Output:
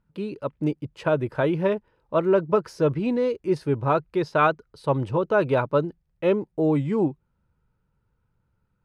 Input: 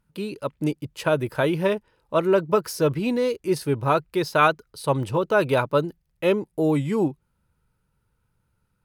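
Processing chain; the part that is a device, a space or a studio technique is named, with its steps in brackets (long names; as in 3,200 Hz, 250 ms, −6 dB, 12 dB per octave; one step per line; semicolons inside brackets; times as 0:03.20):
through cloth (low-pass filter 7,800 Hz 12 dB per octave; high-shelf EQ 2,800 Hz −12.5 dB)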